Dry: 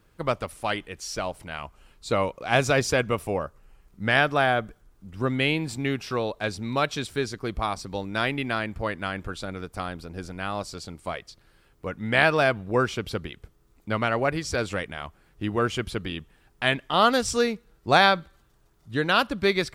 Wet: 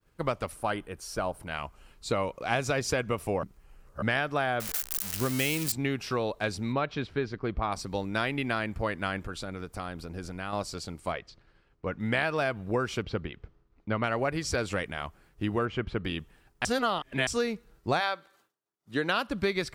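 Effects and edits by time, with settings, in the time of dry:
0.55–1.47 spectral gain 1700–8100 Hz -7 dB
3.43–4.02 reverse
4.6–5.72 switching spikes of -16.5 dBFS
6.72–7.72 air absorption 270 m
9.18–10.53 compressor 2:1, threshold -34 dBFS
11.12–12 air absorption 130 m
13.02–14.04 air absorption 210 m
15.65–16.05 LPF 2300 Hz
16.65–17.27 reverse
17.99–19.27 HPF 550 Hz -> 140 Hz
whole clip: expander -55 dBFS; bell 3500 Hz -2.5 dB 0.2 oct; compressor 6:1, threshold -24 dBFS

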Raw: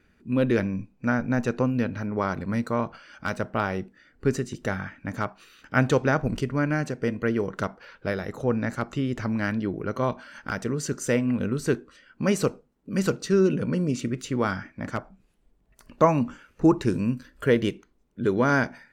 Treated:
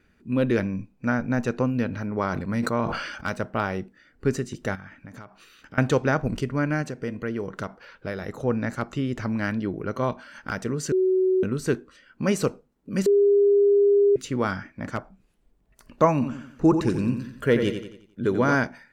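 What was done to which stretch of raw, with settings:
1.87–3.3 sustainer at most 42 dB/s
4.75–5.78 compressor 8:1, threshold -38 dBFS
6.82–8.22 compressor 1.5:1, threshold -32 dBFS
10.92–11.43 bleep 374 Hz -17.5 dBFS
13.06–14.16 bleep 404 Hz -14.5 dBFS
16.13–18.55 feedback echo 89 ms, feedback 43%, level -8 dB

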